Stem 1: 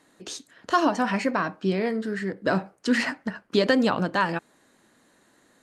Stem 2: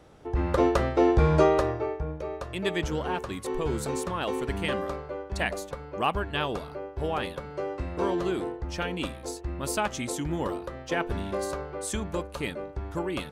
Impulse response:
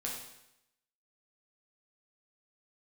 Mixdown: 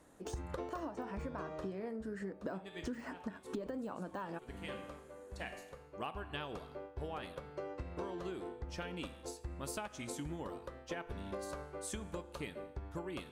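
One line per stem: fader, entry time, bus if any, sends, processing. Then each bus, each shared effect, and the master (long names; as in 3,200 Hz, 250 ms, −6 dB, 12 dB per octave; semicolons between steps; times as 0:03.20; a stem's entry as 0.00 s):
−2.0 dB, 0.00 s, no send, de-essing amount 95%; octave-band graphic EQ 125/2,000/4,000 Hz −6/−6/−11 dB
−1.5 dB, 0.00 s, send −13 dB, expander for the loud parts 1.5 to 1, over −42 dBFS; automatic ducking −13 dB, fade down 1.40 s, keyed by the first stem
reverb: on, RT60 0.85 s, pre-delay 8 ms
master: downward compressor 16 to 1, threshold −38 dBFS, peak gain reduction 19 dB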